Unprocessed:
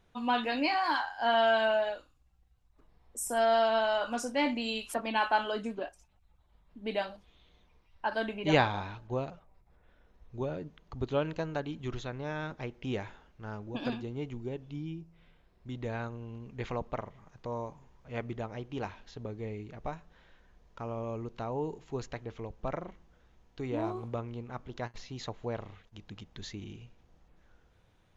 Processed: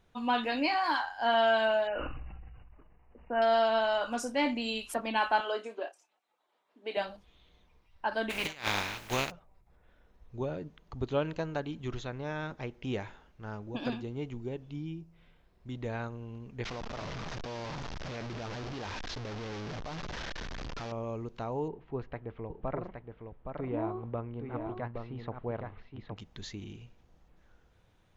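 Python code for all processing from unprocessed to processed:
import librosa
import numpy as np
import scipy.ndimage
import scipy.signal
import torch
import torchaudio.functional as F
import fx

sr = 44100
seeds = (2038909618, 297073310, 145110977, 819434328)

y = fx.chain(x, sr, fx.brickwall_lowpass(high_hz=3000.0),
    fx.sustainer(db_per_s=26.0), at=(1.87, 3.42))
y = fx.chain(y, sr, fx.highpass(hz=340.0, slope=24),
    fx.high_shelf(hz=11000.0, db=-9.5),
    fx.doubler(ms=28.0, db=-10.5), at=(5.4, 6.97))
y = fx.spec_flatten(y, sr, power=0.42, at=(8.29, 9.3), fade=0.02)
y = fx.peak_eq(y, sr, hz=2300.0, db=6.5, octaves=0.91, at=(8.29, 9.3), fade=0.02)
y = fx.over_compress(y, sr, threshold_db=-30.0, ratio=-0.5, at=(8.29, 9.3), fade=0.02)
y = fx.chain(y, sr, fx.delta_mod(bps=32000, step_db=-31.5),
    fx.level_steps(step_db=13), at=(16.64, 20.92))
y = fx.chain(y, sr, fx.bessel_lowpass(hz=1900.0, order=4),
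    fx.echo_single(ms=818, db=-5.5), at=(21.68, 26.17))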